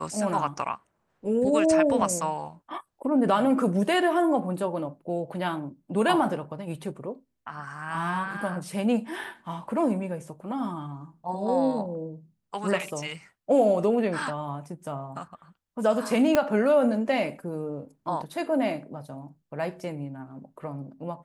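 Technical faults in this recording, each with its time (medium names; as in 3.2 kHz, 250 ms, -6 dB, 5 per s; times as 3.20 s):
9.24 s: dropout 3.4 ms
16.35 s: pop -8 dBFS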